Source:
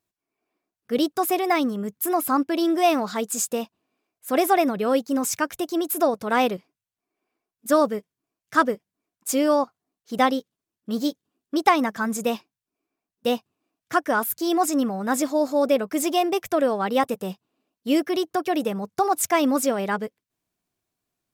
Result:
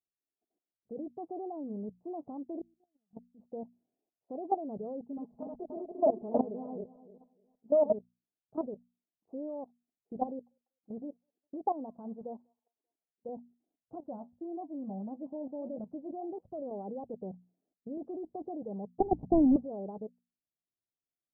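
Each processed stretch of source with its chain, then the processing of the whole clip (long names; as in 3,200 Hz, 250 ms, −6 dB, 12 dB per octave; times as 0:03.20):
0:02.59–0:03.41: resonant band-pass 190 Hz, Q 1.2 + gate with flip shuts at −23 dBFS, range −38 dB
0:05.02–0:07.93: feedback delay that plays each chunk backwards 149 ms, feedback 45%, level −3 dB + comb filter 4.7 ms, depth 97%
0:10.27–0:13.29: spectral tilt +2 dB per octave + delay with a high-pass on its return 195 ms, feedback 32%, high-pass 3,100 Hz, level −6.5 dB
0:13.95–0:16.71: bass and treble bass +7 dB, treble +11 dB + notch filter 440 Hz, Q 5.4 + flanger 1.6 Hz, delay 5.2 ms, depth 7.1 ms, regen +65%
0:17.97–0:18.49: mu-law and A-law mismatch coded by mu + multiband upward and downward compressor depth 100%
0:19.00–0:19.56: each half-wave held at its own peak + inverse Chebyshev low-pass filter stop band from 2,100 Hz + low shelf with overshoot 350 Hz +10.5 dB, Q 1.5
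whole clip: output level in coarse steps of 16 dB; Butterworth low-pass 810 Hz 48 dB per octave; mains-hum notches 60/120/180/240 Hz; level −6 dB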